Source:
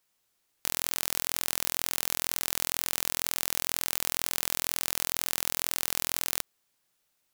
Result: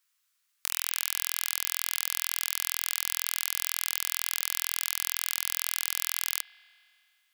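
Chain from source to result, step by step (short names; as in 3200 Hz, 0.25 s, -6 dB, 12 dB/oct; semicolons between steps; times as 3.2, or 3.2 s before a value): steep high-pass 1100 Hz 36 dB/oct; on a send: reverb RT60 2.6 s, pre-delay 46 ms, DRR 14 dB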